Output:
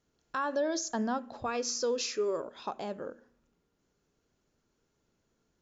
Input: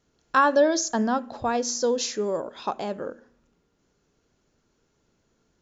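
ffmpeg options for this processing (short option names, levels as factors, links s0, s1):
-filter_complex "[0:a]asettb=1/sr,asplit=3[s0][s1][s2];[s0]atrim=end=1.464[s3];[s1]atrim=start=1.46:end=2.45,asetpts=PTS-STARTPTS,afade=t=in:d=0.004:c=qsin,afade=t=out:st=0.986:d=0.004:c=qsin,equalizer=f=200:t=o:w=0.33:g=-9,equalizer=f=400:t=o:w=0.33:g=6,equalizer=f=800:t=o:w=0.33:g=-8,equalizer=f=1250:t=o:w=0.33:g=9,equalizer=f=2500:t=o:w=0.33:g=10,equalizer=f=5000:t=o:w=0.33:g=5[s4];[s2]atrim=start=2.446[s5];[s3][s4]acrossfade=d=0.004:c1=hsin:c2=qsin[s6];[s6][s5]acrossfade=d=0.004:c1=qsin:c2=hsin,alimiter=limit=0.158:level=0:latency=1:release=105,volume=0.447"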